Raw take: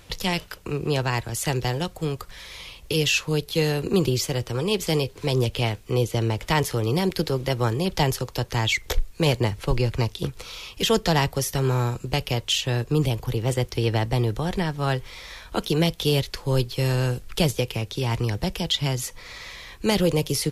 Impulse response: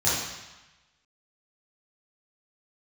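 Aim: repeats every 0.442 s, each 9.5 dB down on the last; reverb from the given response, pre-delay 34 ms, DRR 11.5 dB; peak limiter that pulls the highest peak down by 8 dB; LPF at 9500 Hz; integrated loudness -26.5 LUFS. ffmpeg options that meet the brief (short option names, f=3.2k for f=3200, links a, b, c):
-filter_complex "[0:a]lowpass=9.5k,alimiter=limit=-17dB:level=0:latency=1,aecho=1:1:442|884|1326|1768:0.335|0.111|0.0365|0.012,asplit=2[a][b];[1:a]atrim=start_sample=2205,adelay=34[c];[b][c]afir=irnorm=-1:irlink=0,volume=-25.5dB[d];[a][d]amix=inputs=2:normalize=0"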